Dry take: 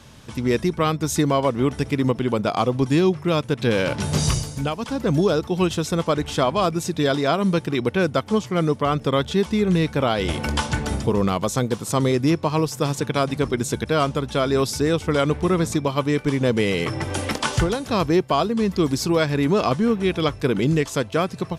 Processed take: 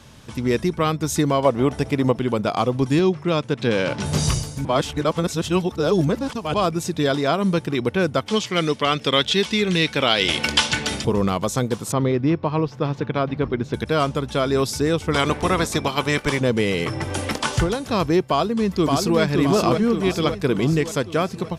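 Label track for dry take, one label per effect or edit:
1.450000	2.160000	parametric band 680 Hz +7 dB 0.92 octaves
2.990000	4.060000	band-pass filter 110–7,700 Hz
4.650000	6.540000	reverse
8.260000	11.050000	meter weighting curve D
11.920000	13.740000	high-frequency loss of the air 280 metres
15.120000	16.390000	ceiling on every frequency bin ceiling under each frame's peak by 15 dB
18.260000	19.200000	delay throw 570 ms, feedback 55%, level −3.5 dB

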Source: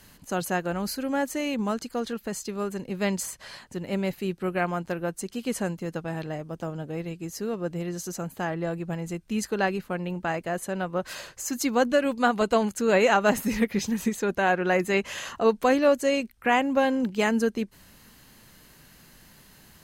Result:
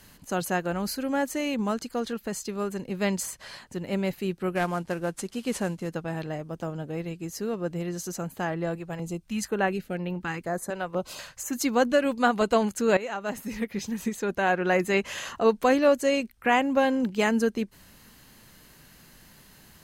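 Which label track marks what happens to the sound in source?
4.550000	5.890000	variable-slope delta modulation 64 kbit/s
8.750000	11.530000	notch on a step sequencer 4.1 Hz 230–7,900 Hz
12.970000	14.740000	fade in, from −15.5 dB

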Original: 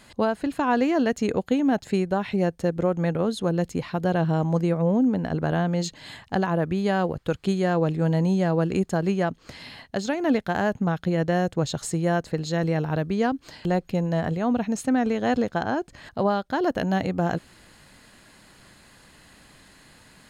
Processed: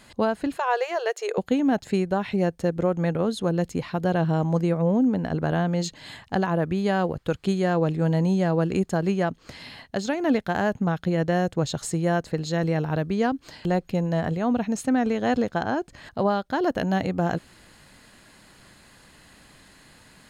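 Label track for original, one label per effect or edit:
0.570000	1.380000	linear-phase brick-wall high-pass 360 Hz

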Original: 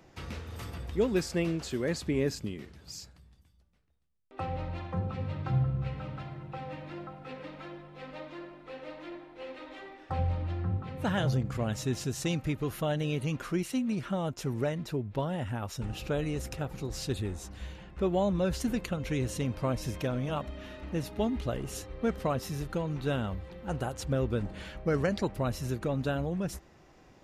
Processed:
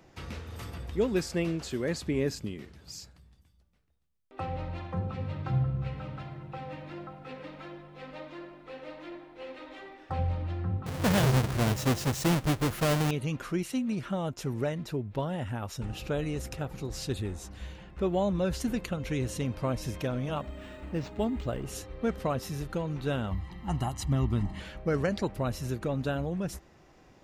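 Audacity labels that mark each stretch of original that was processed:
10.860000	13.110000	each half-wave held at its own peak
20.410000	21.660000	linearly interpolated sample-rate reduction rate divided by 4×
23.310000	24.600000	comb filter 1 ms, depth 86%

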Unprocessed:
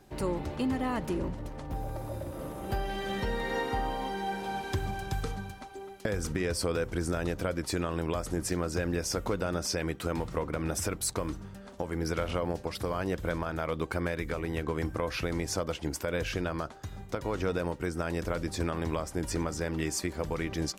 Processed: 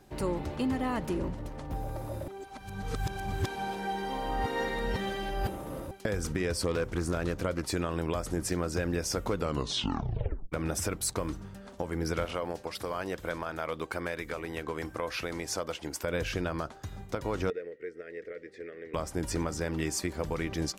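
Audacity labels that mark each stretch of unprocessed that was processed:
2.280000	5.910000	reverse
6.550000	7.630000	highs frequency-modulated by the lows depth 0.24 ms
9.350000	9.350000	tape stop 1.17 s
12.250000	16.040000	low-shelf EQ 250 Hz −11 dB
17.500000	18.940000	pair of resonant band-passes 930 Hz, apart 2.1 octaves

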